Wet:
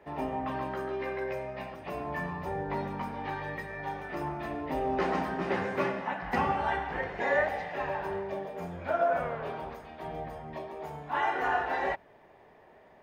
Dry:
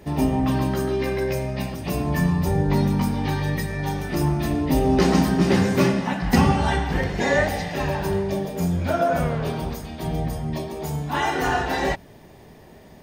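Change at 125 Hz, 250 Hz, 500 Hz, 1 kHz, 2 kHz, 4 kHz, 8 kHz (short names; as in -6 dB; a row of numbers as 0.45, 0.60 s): -19.5 dB, -16.5 dB, -8.0 dB, -4.5 dB, -6.0 dB, -15.0 dB, under -20 dB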